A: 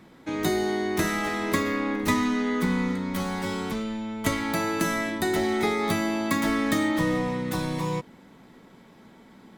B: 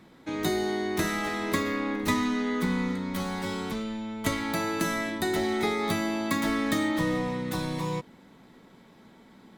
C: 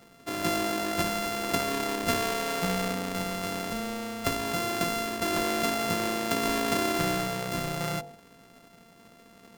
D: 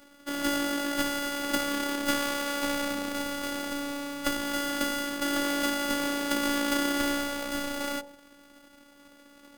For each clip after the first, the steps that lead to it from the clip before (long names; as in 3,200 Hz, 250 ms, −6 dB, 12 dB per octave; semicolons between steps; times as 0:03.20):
parametric band 3,900 Hz +3 dB 0.34 octaves; level −2.5 dB
samples sorted by size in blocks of 64 samples; hum removal 49.43 Hz, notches 19
phases set to zero 285 Hz; level +2.5 dB